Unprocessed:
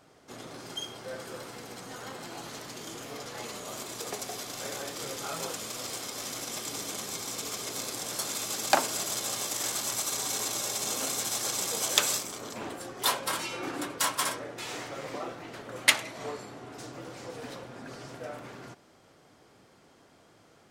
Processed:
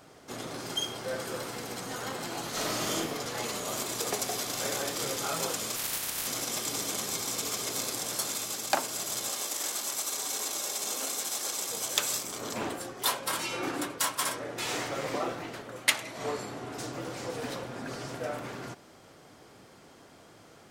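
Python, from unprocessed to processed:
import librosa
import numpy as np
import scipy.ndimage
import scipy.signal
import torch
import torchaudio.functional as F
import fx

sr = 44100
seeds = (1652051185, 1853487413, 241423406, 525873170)

y = fx.reverb_throw(x, sr, start_s=2.5, length_s=0.46, rt60_s=0.81, drr_db=-7.0)
y = fx.spec_clip(y, sr, under_db=22, at=(5.75, 6.26), fade=0.02)
y = fx.highpass(y, sr, hz=250.0, slope=12, at=(9.29, 11.69))
y = fx.high_shelf(y, sr, hz=11000.0, db=4.5)
y = fx.rider(y, sr, range_db=5, speed_s=0.5)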